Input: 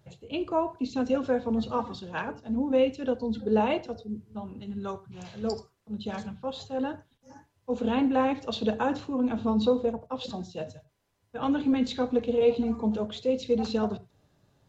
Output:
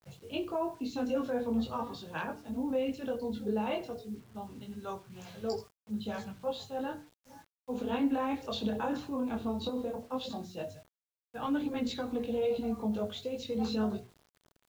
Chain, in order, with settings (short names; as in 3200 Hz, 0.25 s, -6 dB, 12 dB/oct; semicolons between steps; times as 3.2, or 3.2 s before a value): notches 60/120/180/240/300/360/420/480 Hz; limiter -21.5 dBFS, peak gain reduction 8 dB; chorus voices 2, 0.17 Hz, delay 21 ms, depth 4.2 ms; bit-crush 10-bit